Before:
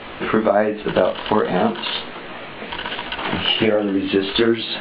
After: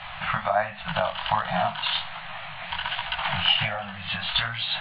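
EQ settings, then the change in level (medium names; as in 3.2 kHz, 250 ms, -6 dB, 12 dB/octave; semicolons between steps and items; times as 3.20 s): elliptic band-stop 160–710 Hz, stop band 50 dB; -1.5 dB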